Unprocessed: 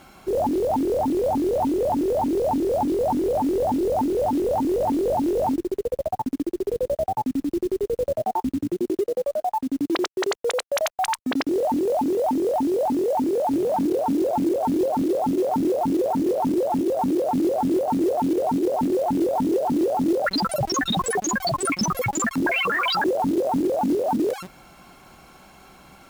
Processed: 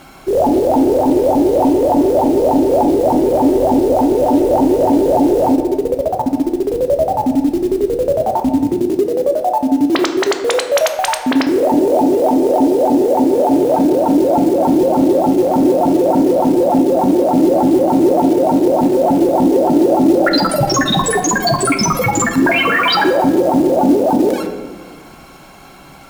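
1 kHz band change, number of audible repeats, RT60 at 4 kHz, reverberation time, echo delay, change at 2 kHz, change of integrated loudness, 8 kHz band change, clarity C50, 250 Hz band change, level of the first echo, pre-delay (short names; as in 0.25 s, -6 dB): +8.5 dB, none, 0.80 s, 1.4 s, none, +9.0 dB, +9.5 dB, +9.0 dB, 8.0 dB, +10.5 dB, none, 3 ms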